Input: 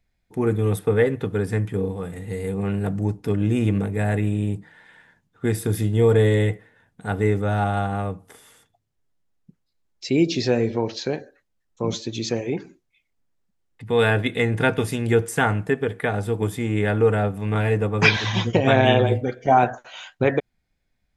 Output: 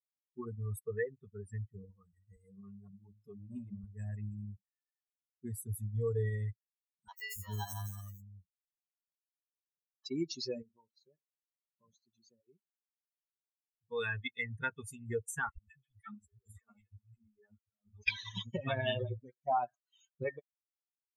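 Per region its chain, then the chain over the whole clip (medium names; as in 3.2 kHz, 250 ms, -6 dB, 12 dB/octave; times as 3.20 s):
2.36–3.84 s: high-pass 81 Hz + de-hum 105.7 Hz, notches 3 + transformer saturation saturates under 370 Hz
7.08–10.06 s: sample-rate reducer 2.4 kHz + three bands offset in time mids, highs, lows 90/280 ms, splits 470/5500 Hz
10.62–13.92 s: compression 1.5:1, threshold -36 dBFS + treble shelf 3.5 kHz -11 dB + loudspeaker Doppler distortion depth 0.1 ms
15.49–18.08 s: three bands offset in time highs, lows, mids 70/570 ms, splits 170/2100 Hz + compressor with a negative ratio -27 dBFS, ratio -0.5 + three-phase chorus
whole clip: expander on every frequency bin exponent 3; peaking EQ 250 Hz -8 dB 2.2 oct; compression 1.5:1, threshold -36 dBFS; trim -3 dB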